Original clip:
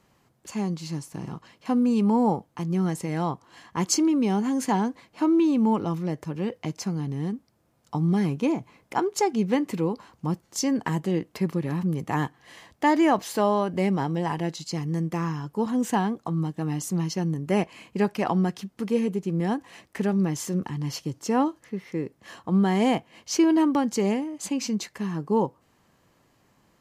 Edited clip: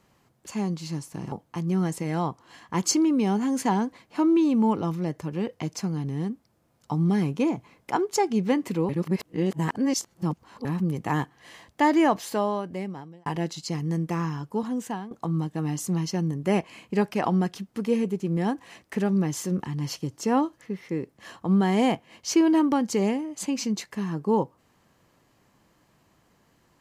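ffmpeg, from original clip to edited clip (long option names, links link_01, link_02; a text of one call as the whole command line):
ffmpeg -i in.wav -filter_complex "[0:a]asplit=6[link_01][link_02][link_03][link_04][link_05][link_06];[link_01]atrim=end=1.322[link_07];[link_02]atrim=start=2.348:end=9.922[link_08];[link_03]atrim=start=9.918:end=11.682,asetpts=PTS-STARTPTS,areverse[link_09];[link_04]atrim=start=11.678:end=14.29,asetpts=PTS-STARTPTS,afade=type=out:start_time=1.402:duration=1.21[link_10];[link_05]atrim=start=14.29:end=16.14,asetpts=PTS-STARTPTS,afade=type=in:duration=0.004:curve=hsin,afade=type=out:start_time=1.14:duration=0.71:silence=0.177828[link_11];[link_06]atrim=start=16.14,asetpts=PTS-STARTPTS,afade=type=in:duration=0.004:curve=hsin:silence=0.177828[link_12];[link_07][link_08]acrossfade=duration=0.004:curve1=hsin:curve2=hsin[link_13];[link_13][link_09]acrossfade=duration=0.004:curve1=hsin:curve2=hsin[link_14];[link_10][link_11][link_12]concat=n=3:v=0:a=1[link_15];[link_14][link_15]acrossfade=duration=0.004:curve1=hsin:curve2=hsin" out.wav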